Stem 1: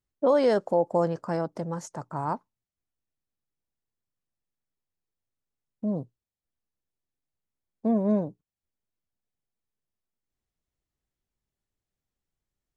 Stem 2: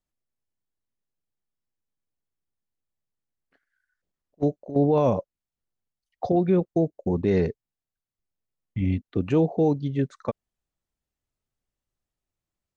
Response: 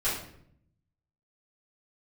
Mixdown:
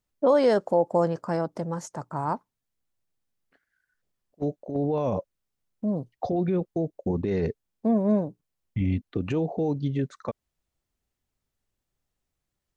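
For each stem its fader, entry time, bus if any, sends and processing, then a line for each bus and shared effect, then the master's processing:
+1.5 dB, 0.00 s, no send, none
+1.5 dB, 0.00 s, no send, peak limiter -19 dBFS, peak gain reduction 8.5 dB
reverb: none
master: none

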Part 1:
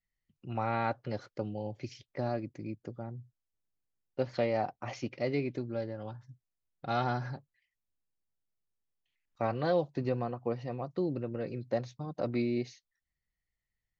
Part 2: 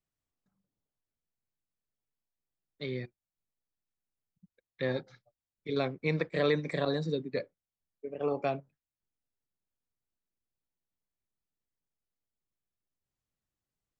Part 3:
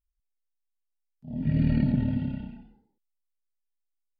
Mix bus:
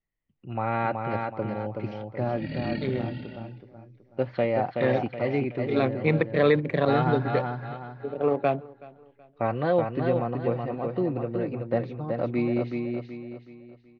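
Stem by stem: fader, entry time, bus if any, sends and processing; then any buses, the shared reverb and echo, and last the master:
-1.0 dB, 0.00 s, no send, echo send -4.5 dB, low-pass 3.2 kHz 24 dB/octave
+1.5 dB, 0.00 s, no send, echo send -22 dB, local Wiener filter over 25 samples; low-pass 2.7 kHz 12 dB/octave
-4.5 dB, 0.95 s, no send, no echo send, rippled Chebyshev low-pass 5.9 kHz, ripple 3 dB; tilt EQ +4 dB/octave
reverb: none
echo: feedback delay 375 ms, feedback 38%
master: level rider gain up to 6 dB

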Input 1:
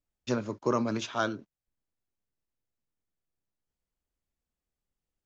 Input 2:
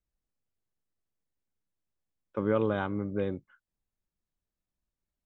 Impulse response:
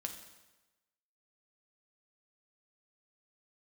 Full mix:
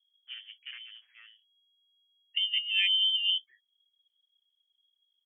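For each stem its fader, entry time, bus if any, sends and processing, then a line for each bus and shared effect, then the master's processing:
-17.0 dB, 0.00 s, no send, self-modulated delay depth 0.35 ms; steep low-pass 1.8 kHz 48 dB/octave; auto duck -22 dB, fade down 1.80 s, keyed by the second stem
+2.0 dB, 0.00 s, no send, spectral contrast enhancement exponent 1.9; high-order bell 2.1 kHz -11 dB 1.2 oct; comb 4.5 ms, depth 94%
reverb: none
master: frequency inversion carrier 3.3 kHz; compressor with a negative ratio -27 dBFS, ratio -0.5

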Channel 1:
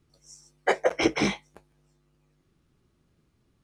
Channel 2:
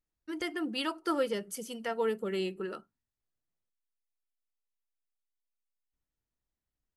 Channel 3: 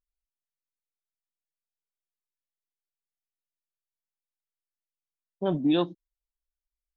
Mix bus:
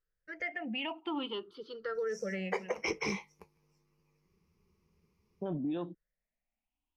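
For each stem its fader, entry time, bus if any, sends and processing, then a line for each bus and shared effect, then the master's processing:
-6.5 dB, 1.85 s, no bus, no send, rippled EQ curve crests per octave 0.82, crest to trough 13 dB
-3.5 dB, 0.00 s, bus A, no send, drifting ripple filter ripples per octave 0.58, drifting +0.52 Hz, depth 22 dB; bass shelf 240 Hz -6 dB; peak limiter -22.5 dBFS, peak gain reduction 8.5 dB
-3.0 dB, 0.00 s, bus A, no send, low-pass 1.7 kHz 6 dB/octave
bus A: 0.0 dB, low-pass 3.6 kHz 24 dB/octave; peak limiter -27 dBFS, peak gain reduction 9 dB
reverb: none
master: compression 12:1, threshold -30 dBFS, peak gain reduction 10 dB

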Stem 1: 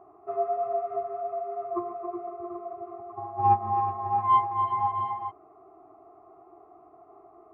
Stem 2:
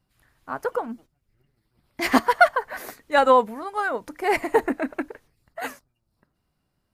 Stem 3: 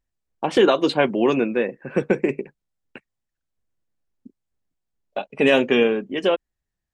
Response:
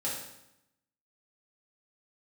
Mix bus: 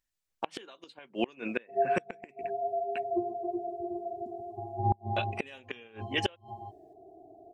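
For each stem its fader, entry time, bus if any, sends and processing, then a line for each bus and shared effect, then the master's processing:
+0.5 dB, 1.40 s, no send, elliptic band-stop 680–3600 Hz, stop band 50 dB
mute
-4.5 dB, 0.00 s, no send, tilt shelf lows -8.5 dB; hum notches 50/100/150/200 Hz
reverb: none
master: bass shelf 500 Hz +3.5 dB; inverted gate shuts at -15 dBFS, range -29 dB

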